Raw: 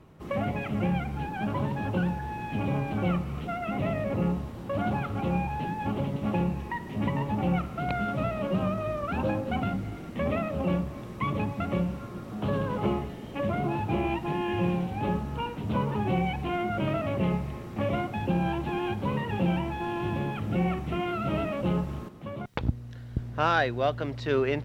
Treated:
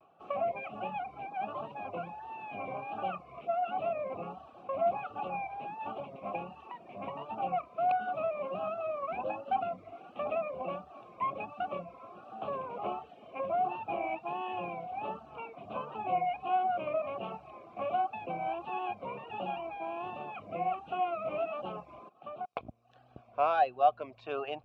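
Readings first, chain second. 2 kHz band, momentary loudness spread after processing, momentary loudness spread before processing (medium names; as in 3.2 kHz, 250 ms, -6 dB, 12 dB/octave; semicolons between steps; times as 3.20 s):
-9.0 dB, 12 LU, 6 LU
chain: vowel filter a; vibrato 1.4 Hz 85 cents; reverb removal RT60 0.57 s; trim +6.5 dB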